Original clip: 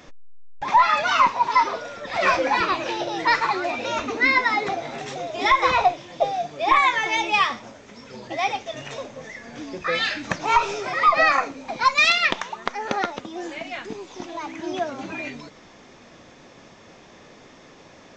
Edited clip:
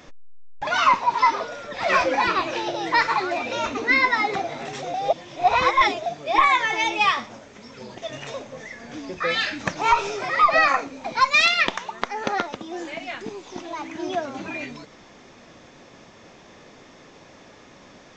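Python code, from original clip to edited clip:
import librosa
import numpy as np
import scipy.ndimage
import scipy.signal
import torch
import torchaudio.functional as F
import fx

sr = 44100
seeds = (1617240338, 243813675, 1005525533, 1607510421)

y = fx.edit(x, sr, fx.cut(start_s=0.67, length_s=0.33),
    fx.reverse_span(start_s=5.27, length_s=1.12),
    fx.cut(start_s=8.31, length_s=0.31), tone=tone)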